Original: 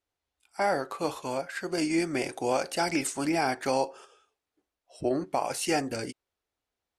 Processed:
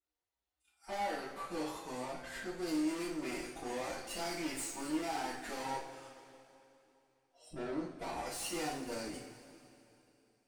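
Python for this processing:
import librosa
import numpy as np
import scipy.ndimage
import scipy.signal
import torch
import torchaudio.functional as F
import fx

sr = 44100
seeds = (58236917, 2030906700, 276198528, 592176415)

y = fx.tube_stage(x, sr, drive_db=33.0, bias=0.7)
y = fx.stretch_vocoder(y, sr, factor=1.5)
y = fx.rev_double_slope(y, sr, seeds[0], early_s=0.38, late_s=3.0, knee_db=-16, drr_db=-4.5)
y = y * librosa.db_to_amplitude(-8.0)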